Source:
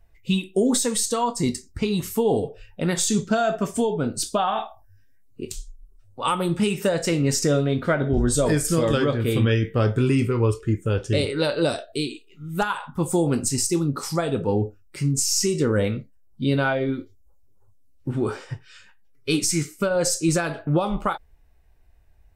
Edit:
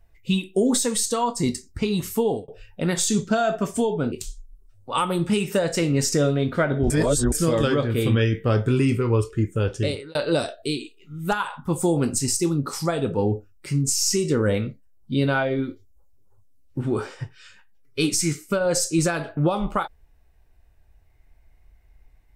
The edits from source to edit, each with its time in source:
2.23–2.48 fade out
4.12–5.42 cut
8.2–8.62 reverse
11.06–11.45 fade out

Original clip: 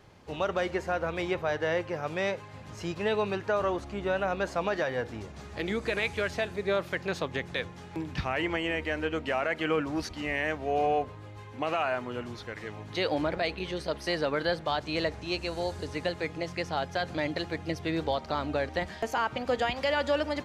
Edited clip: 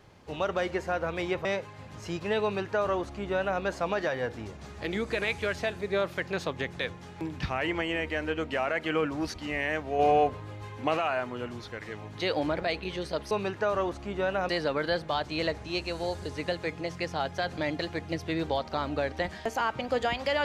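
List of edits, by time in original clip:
1.45–2.2 cut
3.18–4.36 copy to 14.06
10.74–11.72 gain +4 dB

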